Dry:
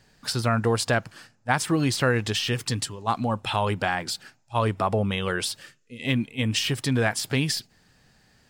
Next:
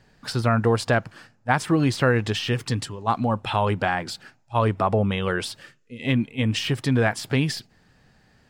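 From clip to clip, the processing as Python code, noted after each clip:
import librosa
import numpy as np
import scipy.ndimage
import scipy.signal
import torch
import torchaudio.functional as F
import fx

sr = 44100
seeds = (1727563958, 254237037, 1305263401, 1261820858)

y = fx.high_shelf(x, sr, hz=3700.0, db=-10.5)
y = F.gain(torch.from_numpy(y), 3.0).numpy()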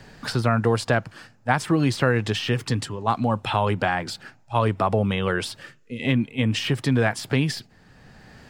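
y = fx.band_squash(x, sr, depth_pct=40)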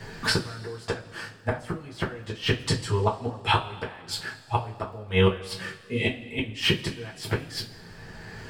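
y = fx.gate_flip(x, sr, shuts_db=-13.0, range_db=-26)
y = fx.rev_double_slope(y, sr, seeds[0], early_s=0.21, late_s=1.8, knee_db=-21, drr_db=-5.5)
y = fx.dmg_crackle(y, sr, seeds[1], per_s=78.0, level_db=-56.0)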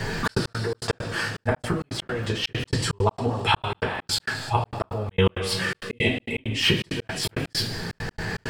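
y = fx.step_gate(x, sr, bpm=165, pattern='xxx.x.xx.x.x', floor_db=-60.0, edge_ms=4.5)
y = fx.env_flatten(y, sr, amount_pct=50)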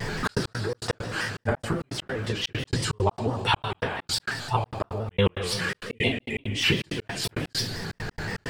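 y = fx.vibrato_shape(x, sr, shape='square', rate_hz=5.8, depth_cents=100.0)
y = F.gain(torch.from_numpy(y), -2.0).numpy()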